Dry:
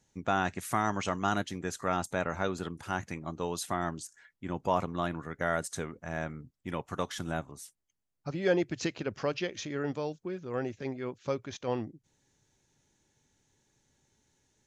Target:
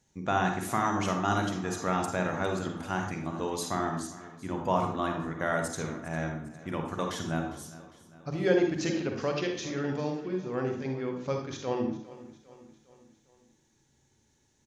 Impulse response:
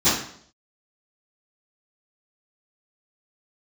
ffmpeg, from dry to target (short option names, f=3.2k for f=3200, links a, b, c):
-filter_complex "[0:a]aecho=1:1:404|808|1212|1616:0.126|0.0667|0.0354|0.0187,asplit=2[a][b];[1:a]atrim=start_sample=2205,adelay=31[c];[b][c]afir=irnorm=-1:irlink=0,volume=-21.5dB[d];[a][d]amix=inputs=2:normalize=0"